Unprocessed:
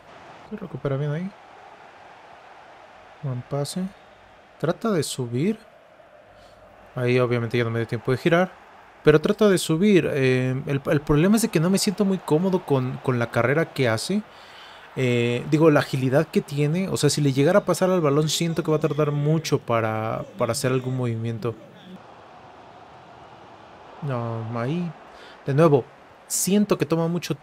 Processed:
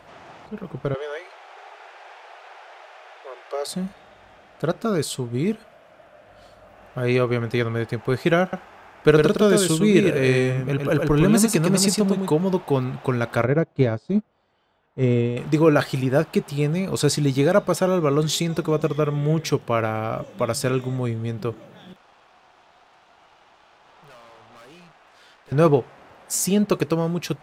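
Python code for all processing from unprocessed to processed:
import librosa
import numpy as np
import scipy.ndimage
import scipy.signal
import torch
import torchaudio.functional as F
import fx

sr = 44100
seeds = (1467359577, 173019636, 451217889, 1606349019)

y = fx.chain(x, sr, fx.steep_highpass(hz=360.0, slope=72),
    fx.peak_eq(hz=2700.0, db=4.0, octaves=2.9), at=(0.94, 3.67))
y = fx.chain(y, sr, fx.echo_single(ms=107, db=-4.0),
    fx.dynamic_eq(hz=7900.0, q=1.1, threshold_db=-42.0, ratio=4.0, max_db=5), at=(8.42, 12.3))
y = fx.chain(y, sr, fx.steep_lowpass(hz=7800.0, slope=36),
    fx.tilt_shelf(db=7.0, hz=800.0),
    fx.upward_expand(threshold_db=-28.0, expansion=2.5), at=(13.44, 15.37))
y = fx.chain(y, sr, fx.highpass(hz=1200.0, slope=6),
    fx.tube_stage(drive_db=44.0, bias=0.75), at=(21.93, 25.52))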